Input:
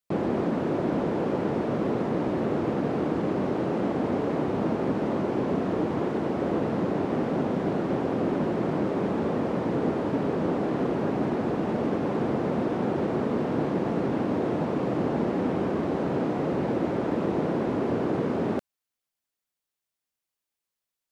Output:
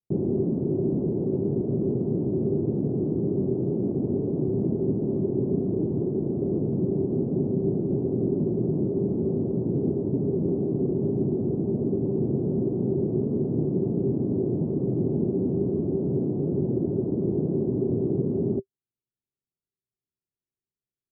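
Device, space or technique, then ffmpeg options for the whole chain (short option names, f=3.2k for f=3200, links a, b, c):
under water: -af "lowpass=f=520:w=0.5412,lowpass=f=520:w=1.3066,equalizer=f=125:t=o:w=1:g=8,equalizer=f=500:t=o:w=1:g=-8,equalizer=f=4k:t=o:w=1:g=9,equalizer=f=390:t=o:w=0.23:g=12"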